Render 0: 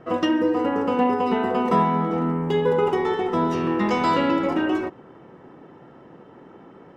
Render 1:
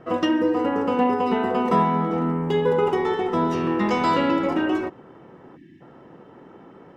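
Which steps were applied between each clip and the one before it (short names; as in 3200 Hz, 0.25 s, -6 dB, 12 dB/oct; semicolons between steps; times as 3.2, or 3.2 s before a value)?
spectral gain 5.57–5.81, 380–1600 Hz -29 dB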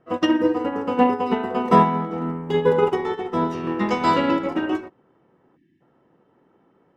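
upward expander 2.5:1, over -30 dBFS; gain +6.5 dB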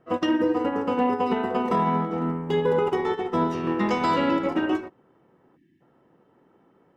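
limiter -14 dBFS, peak gain reduction 11 dB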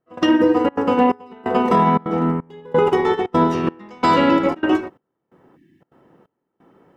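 step gate "..xxxxxx.xxxx.." 175 bpm -24 dB; gain +7.5 dB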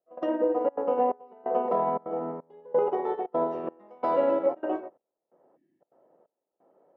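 band-pass 610 Hz, Q 4.2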